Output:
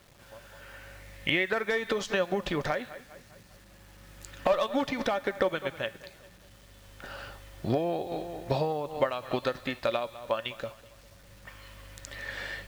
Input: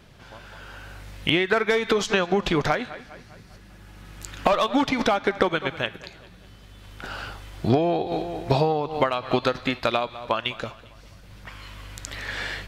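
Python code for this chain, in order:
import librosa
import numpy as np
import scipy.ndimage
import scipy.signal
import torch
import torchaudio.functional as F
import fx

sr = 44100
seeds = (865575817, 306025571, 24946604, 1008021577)

y = fx.small_body(x, sr, hz=(560.0, 1800.0), ring_ms=90, db=12)
y = fx.quant_dither(y, sr, seeds[0], bits=8, dither='none')
y = fx.peak_eq(y, sr, hz=2100.0, db=7.5, octaves=0.51, at=(0.62, 1.51))
y = y * librosa.db_to_amplitude(-8.5)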